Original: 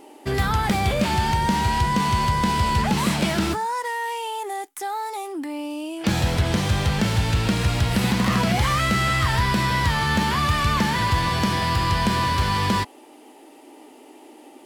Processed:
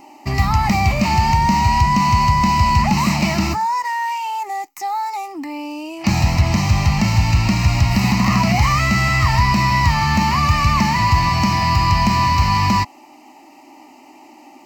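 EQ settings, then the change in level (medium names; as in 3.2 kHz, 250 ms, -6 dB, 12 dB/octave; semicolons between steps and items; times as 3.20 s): static phaser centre 2.3 kHz, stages 8; +7.0 dB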